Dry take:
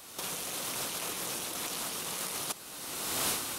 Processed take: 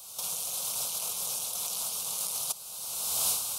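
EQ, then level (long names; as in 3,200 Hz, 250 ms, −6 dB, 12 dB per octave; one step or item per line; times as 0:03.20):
high-shelf EQ 2,400 Hz +9.5 dB
phaser with its sweep stopped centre 760 Hz, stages 4
−3.5 dB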